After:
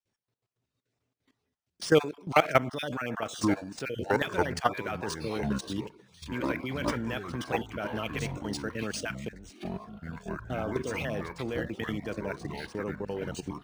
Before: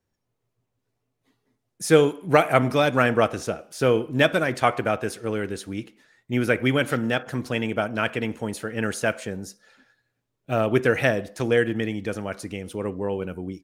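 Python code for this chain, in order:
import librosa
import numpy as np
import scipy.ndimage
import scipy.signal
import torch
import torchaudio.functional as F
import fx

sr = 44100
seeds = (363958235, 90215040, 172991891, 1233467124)

y = fx.spec_dropout(x, sr, seeds[0], share_pct=25)
y = scipy.signal.sosfilt(scipy.signal.butter(2, 87.0, 'highpass', fs=sr, output='sos'), y)
y = fx.high_shelf(y, sr, hz=2600.0, db=7.0)
y = fx.level_steps(y, sr, step_db=16)
y = fx.echo_pitch(y, sr, ms=563, semitones=-7, count=3, db_per_echo=-6.0)
y = np.interp(np.arange(len(y)), np.arange(len(y))[::3], y[::3])
y = y * librosa.db_to_amplitude(-1.5)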